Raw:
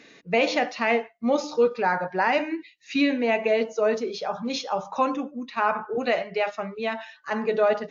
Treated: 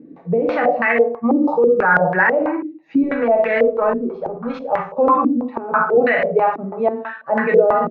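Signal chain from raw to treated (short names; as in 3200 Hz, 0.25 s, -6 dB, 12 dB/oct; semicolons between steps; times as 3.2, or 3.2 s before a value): 3.03–4.97 power-law curve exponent 1.4; early reflections 55 ms -7 dB, 78 ms -17 dB; reverb RT60 0.45 s, pre-delay 3 ms, DRR 2.5 dB; maximiser +17 dB; stepped low-pass 6.1 Hz 300–1800 Hz; gain -10.5 dB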